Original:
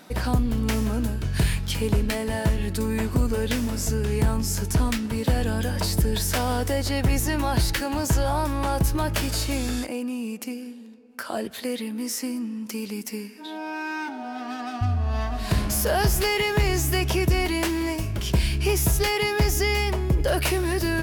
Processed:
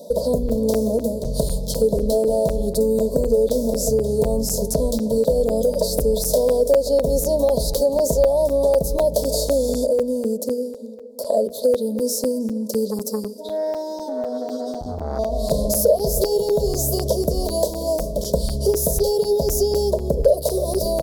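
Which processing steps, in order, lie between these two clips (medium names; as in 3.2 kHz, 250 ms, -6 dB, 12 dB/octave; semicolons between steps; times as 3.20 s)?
elliptic band-stop 660–3900 Hz, stop band 50 dB; high-order bell 820 Hz +14.5 dB 2.3 oct; static phaser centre 510 Hz, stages 8; echo from a far wall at 54 m, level -20 dB; compression 2.5:1, threshold -24 dBFS, peak gain reduction 11 dB; hum notches 60/120/180/240/300/360/420/480 Hz; crackling interface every 0.25 s, samples 256, zero, from 0.49 s; 12.91–15.19 s: transformer saturation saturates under 450 Hz; trim +7.5 dB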